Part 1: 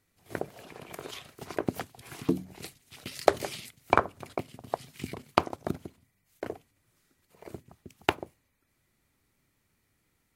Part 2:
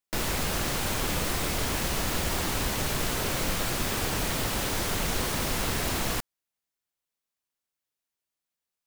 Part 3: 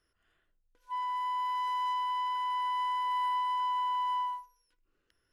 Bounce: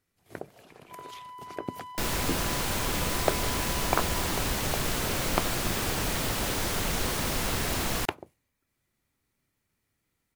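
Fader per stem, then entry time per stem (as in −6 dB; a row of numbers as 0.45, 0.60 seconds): −5.5, −0.5, −12.0 decibels; 0.00, 1.85, 0.00 seconds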